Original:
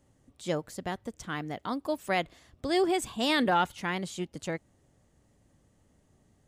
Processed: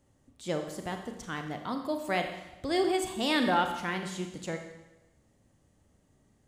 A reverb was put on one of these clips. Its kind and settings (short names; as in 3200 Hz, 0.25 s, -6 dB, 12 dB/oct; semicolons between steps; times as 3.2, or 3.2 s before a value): Schroeder reverb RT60 1 s, combs from 29 ms, DRR 5 dB; gain -2 dB